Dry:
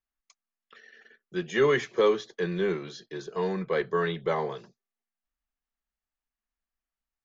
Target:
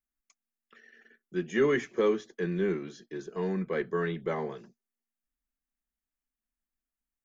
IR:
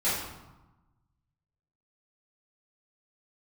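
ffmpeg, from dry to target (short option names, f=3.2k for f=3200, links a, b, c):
-af "equalizer=f=125:t=o:w=1:g=-6,equalizer=f=250:t=o:w=1:g=7,equalizer=f=500:t=o:w=1:g=-5,equalizer=f=1k:t=o:w=1:g=-6,equalizer=f=4k:t=o:w=1:g=-11"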